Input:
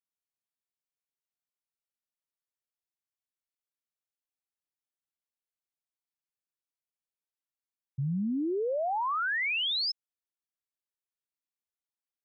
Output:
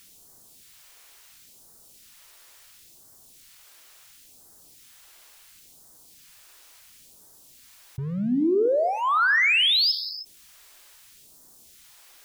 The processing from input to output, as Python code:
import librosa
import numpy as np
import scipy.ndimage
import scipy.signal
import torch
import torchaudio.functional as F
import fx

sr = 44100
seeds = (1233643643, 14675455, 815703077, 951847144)

p1 = np.clip(10.0 ** (31.0 / 20.0) * x, -1.0, 1.0) / 10.0 ** (31.0 / 20.0)
p2 = x + (p1 * librosa.db_to_amplitude(-11.0))
p3 = fx.rev_gated(p2, sr, seeds[0], gate_ms=340, shape='falling', drr_db=11.0)
p4 = fx.phaser_stages(p3, sr, stages=2, low_hz=150.0, high_hz=2400.0, hz=0.72, feedback_pct=25)
p5 = fx.env_flatten(p4, sr, amount_pct=50)
y = p5 * librosa.db_to_amplitude(6.5)